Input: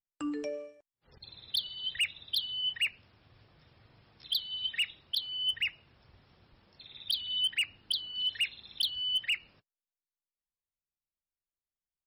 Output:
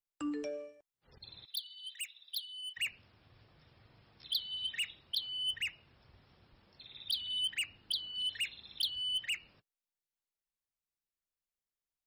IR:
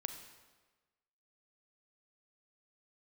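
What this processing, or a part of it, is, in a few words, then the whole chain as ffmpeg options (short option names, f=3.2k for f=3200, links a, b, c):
one-band saturation: -filter_complex "[0:a]acrossover=split=370|3700[a][b][c];[b]asoftclip=type=tanh:threshold=-32.5dB[d];[a][d][c]amix=inputs=3:normalize=0,asettb=1/sr,asplit=3[e][f][g];[e]atrim=end=1.454[h];[f]atrim=start=1.45:end=2.77,asetpts=PTS-STARTPTS,afade=t=in:d=0.004:c=qsin,afade=t=out:st=1.316:d=0.004:c=qsin,aderivative[i];[g]atrim=start=2.766[j];[h][i]acrossfade=d=0.004:c1=hsin:c2=qsin[k];[k][j]acrossfade=d=0.004:c1=qsin:c2=hsin,volume=-2dB"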